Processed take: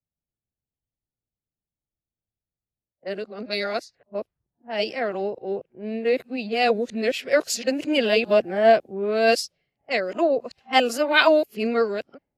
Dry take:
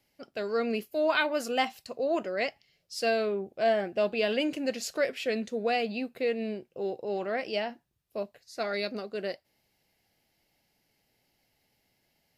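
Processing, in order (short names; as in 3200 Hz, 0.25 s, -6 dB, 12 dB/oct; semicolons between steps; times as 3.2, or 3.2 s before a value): whole clip reversed; low-pass opened by the level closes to 530 Hz, open at -28.5 dBFS; three-band expander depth 70%; gain +7 dB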